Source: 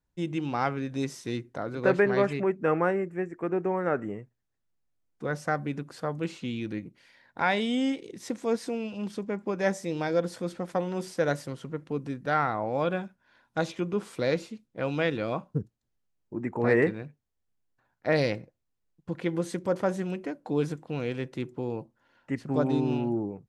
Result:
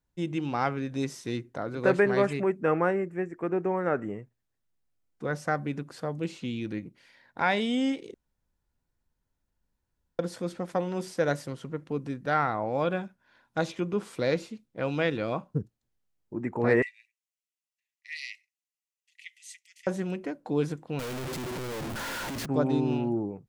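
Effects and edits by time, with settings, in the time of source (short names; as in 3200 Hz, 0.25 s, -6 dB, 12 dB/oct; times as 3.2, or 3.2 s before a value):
1.8–2.61 bell 9000 Hz +7.5 dB
5.93–6.65 dynamic EQ 1300 Hz, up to -6 dB, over -47 dBFS, Q 1.1
8.14–10.19 room tone
16.82–19.87 rippled Chebyshev high-pass 1900 Hz, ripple 6 dB
20.99–22.46 infinite clipping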